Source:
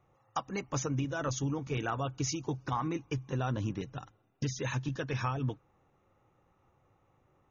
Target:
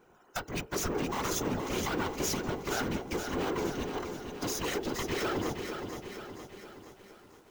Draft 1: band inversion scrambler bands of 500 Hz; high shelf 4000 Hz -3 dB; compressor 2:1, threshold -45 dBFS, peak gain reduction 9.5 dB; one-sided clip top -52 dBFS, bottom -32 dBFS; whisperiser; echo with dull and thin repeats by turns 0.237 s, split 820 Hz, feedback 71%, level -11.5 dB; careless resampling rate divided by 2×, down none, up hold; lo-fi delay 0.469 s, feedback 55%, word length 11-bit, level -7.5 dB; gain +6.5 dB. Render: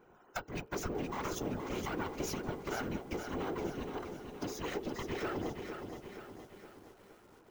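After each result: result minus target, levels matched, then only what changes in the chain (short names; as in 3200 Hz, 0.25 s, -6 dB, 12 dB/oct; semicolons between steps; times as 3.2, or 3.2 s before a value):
compressor: peak gain reduction +9.5 dB; 8000 Hz band -5.0 dB
remove: compressor 2:1, threshold -45 dBFS, peak gain reduction 9.5 dB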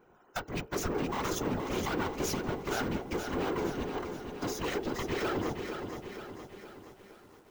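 8000 Hz band -4.0 dB
change: high shelf 4000 Hz +8 dB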